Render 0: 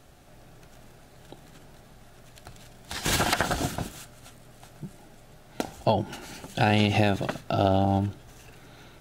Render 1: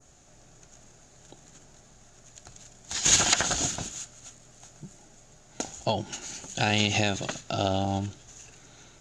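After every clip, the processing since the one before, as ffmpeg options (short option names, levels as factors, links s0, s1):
-af "adynamicequalizer=threshold=0.00708:dfrequency=3400:dqfactor=0.78:tfrequency=3400:tqfactor=0.78:attack=5:release=100:ratio=0.375:range=3.5:mode=boostabove:tftype=bell,lowpass=f=6800:t=q:w=9.4,volume=0.562"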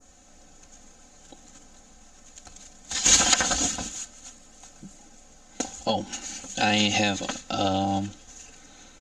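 -af "aecho=1:1:3.9:0.91"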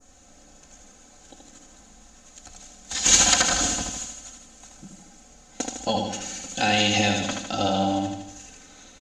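-af "aecho=1:1:78|156|234|312|390|468|546:0.596|0.322|0.174|0.0938|0.0506|0.0274|0.0148"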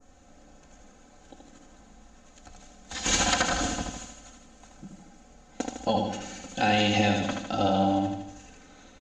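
-af "lowpass=f=1900:p=1"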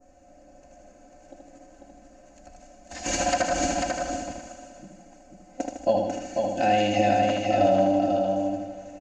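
-filter_complex "[0:a]superequalizer=6b=2:8b=3.55:10b=0.631:13b=0.355,asplit=2[s0][s1];[s1]aecho=0:1:494|988|1482:0.631|0.0946|0.0142[s2];[s0][s2]amix=inputs=2:normalize=0,volume=0.668"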